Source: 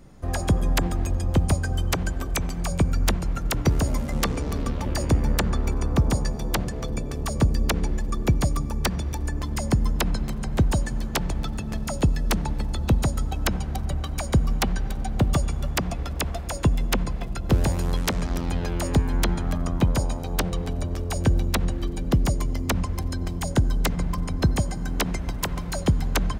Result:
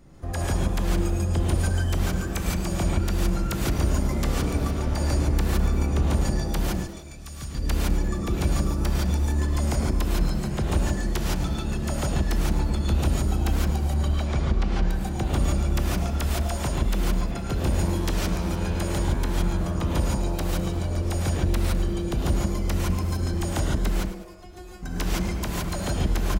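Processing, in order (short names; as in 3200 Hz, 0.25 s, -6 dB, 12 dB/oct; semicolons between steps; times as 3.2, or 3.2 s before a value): 6.7–7.55 passive tone stack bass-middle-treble 5-5-5; limiter -17.5 dBFS, peak gain reduction 8 dB; 14.14–14.83 air absorption 120 m; 23.94–24.83 resonator 360 Hz, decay 0.23 s, harmonics all, mix 100%; frequency-shifting echo 0.103 s, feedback 45%, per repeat +150 Hz, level -13 dB; non-linear reverb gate 0.19 s rising, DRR -3.5 dB; gain -4 dB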